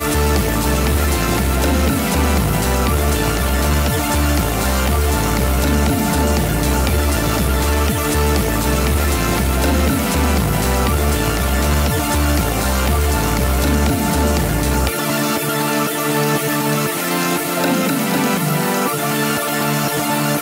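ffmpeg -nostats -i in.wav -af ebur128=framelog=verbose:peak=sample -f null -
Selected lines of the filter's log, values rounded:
Integrated loudness:
  I:         -16.9 LUFS
  Threshold: -26.9 LUFS
Loudness range:
  LRA:         0.6 LU
  Threshold: -36.9 LUFS
  LRA low:   -17.3 LUFS
  LRA high:  -16.6 LUFS
Sample peak:
  Peak:       -2.8 dBFS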